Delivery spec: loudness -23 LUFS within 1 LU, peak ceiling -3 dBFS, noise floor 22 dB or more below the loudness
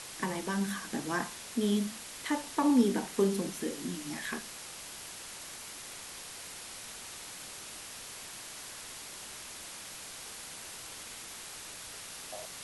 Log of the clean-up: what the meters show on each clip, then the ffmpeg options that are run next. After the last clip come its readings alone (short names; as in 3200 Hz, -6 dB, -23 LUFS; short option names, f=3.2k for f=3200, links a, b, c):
noise floor -46 dBFS; noise floor target -58 dBFS; loudness -36.0 LUFS; peak -14.5 dBFS; loudness target -23.0 LUFS
-> -af "afftdn=nr=12:nf=-46"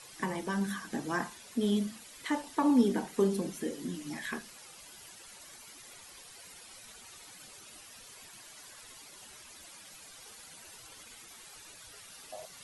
noise floor -52 dBFS; noise floor target -55 dBFS
-> -af "afftdn=nr=6:nf=-52"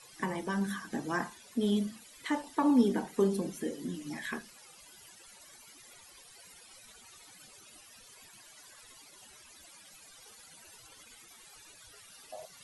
noise floor -56 dBFS; loudness -32.5 LUFS; peak -14.5 dBFS; loudness target -23.0 LUFS
-> -af "volume=9.5dB"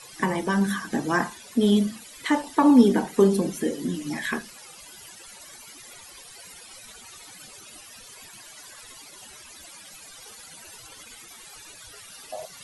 loudness -23.0 LUFS; peak -5.0 dBFS; noise floor -46 dBFS